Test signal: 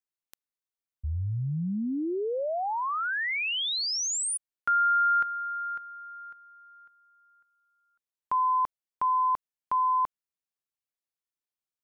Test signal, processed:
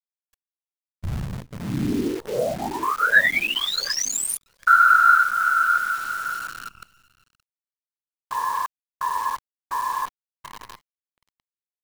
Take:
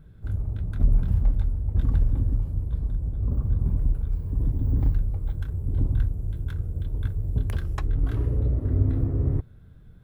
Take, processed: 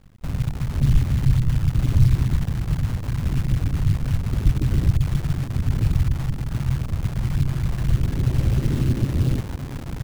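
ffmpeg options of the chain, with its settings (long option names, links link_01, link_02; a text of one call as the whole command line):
ffmpeg -i in.wav -filter_complex "[0:a]bandreject=frequency=840:width=5.1,asplit=2[link_01][link_02];[link_02]acompressor=threshold=-28dB:ratio=20:attack=11:release=217:knee=6:detection=rms,volume=0.5dB[link_03];[link_01][link_03]amix=inputs=2:normalize=0,equalizer=frequency=1700:width=3.4:gain=10,aecho=1:1:3.6:0.93,asplit=2[link_04][link_05];[link_05]adelay=730,lowpass=frequency=930:poles=1,volume=-10dB,asplit=2[link_06][link_07];[link_07]adelay=730,lowpass=frequency=930:poles=1,volume=0.47,asplit=2[link_08][link_09];[link_09]adelay=730,lowpass=frequency=930:poles=1,volume=0.47,asplit=2[link_10][link_11];[link_11]adelay=730,lowpass=frequency=930:poles=1,volume=0.47,asplit=2[link_12][link_13];[link_13]adelay=730,lowpass=frequency=930:poles=1,volume=0.47[link_14];[link_04][link_06][link_08][link_10][link_12][link_14]amix=inputs=6:normalize=0,afftfilt=real='hypot(re,im)*cos(2*PI*random(0))':imag='hypot(re,im)*sin(2*PI*random(1))':win_size=512:overlap=0.75,afwtdn=0.0224,adynamicequalizer=threshold=0.00708:dfrequency=130:dqfactor=6.1:tfrequency=130:tqfactor=6.1:attack=5:release=100:ratio=0.375:range=3:mode=boostabove:tftype=bell,acrusher=bits=7:dc=4:mix=0:aa=0.000001,volume=2.5dB" out.wav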